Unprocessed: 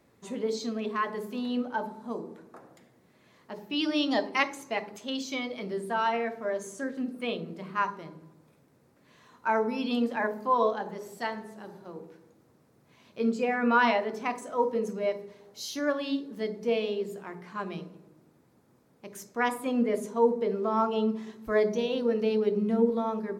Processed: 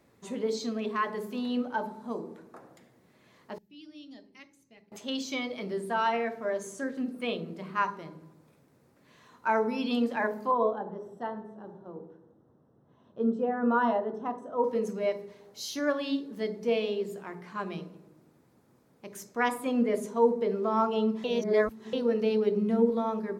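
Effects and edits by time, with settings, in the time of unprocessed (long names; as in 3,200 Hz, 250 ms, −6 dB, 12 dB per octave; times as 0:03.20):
0:03.58–0:04.92: guitar amp tone stack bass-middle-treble 10-0-1
0:10.51–0:14.64: moving average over 19 samples
0:21.24–0:21.93: reverse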